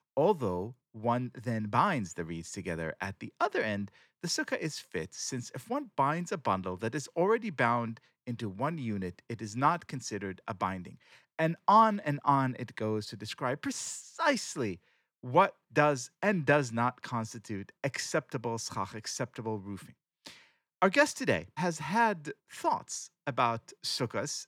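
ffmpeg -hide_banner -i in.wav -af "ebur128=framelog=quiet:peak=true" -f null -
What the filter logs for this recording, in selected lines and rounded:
Integrated loudness:
  I:         -31.8 LUFS
  Threshold: -42.1 LUFS
Loudness range:
  LRA:         5.3 LU
  Threshold: -52.1 LUFS
  LRA low:   -35.1 LUFS
  LRA high:  -29.9 LUFS
True peak:
  Peak:      -10.9 dBFS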